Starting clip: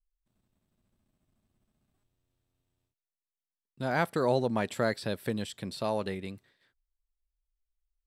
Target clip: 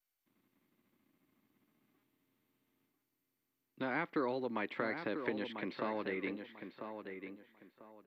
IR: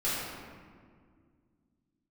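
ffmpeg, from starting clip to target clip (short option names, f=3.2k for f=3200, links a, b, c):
-filter_complex "[0:a]acrossover=split=330|2400[a][b][c];[a]acompressor=threshold=-47dB:ratio=4[d];[b]acompressor=threshold=-39dB:ratio=4[e];[c]acompressor=threshold=-57dB:ratio=4[f];[d][e][f]amix=inputs=3:normalize=0,highpass=210,equalizer=f=300:t=q:w=4:g=10,equalizer=f=660:t=q:w=4:g=-6,equalizer=f=1.1k:t=q:w=4:g=4,equalizer=f=2.1k:t=q:w=4:g=9,lowpass=f=3.8k:w=0.5412,lowpass=f=3.8k:w=1.3066,asplit=2[g][h];[h]adelay=994,lowpass=f=2.9k:p=1,volume=-7.5dB,asplit=2[i][j];[j]adelay=994,lowpass=f=2.9k:p=1,volume=0.26,asplit=2[k][l];[l]adelay=994,lowpass=f=2.9k:p=1,volume=0.26[m];[i][k][m]amix=inputs=3:normalize=0[n];[g][n]amix=inputs=2:normalize=0,volume=2dB" -ar 48000 -c:a mp2 -b:a 96k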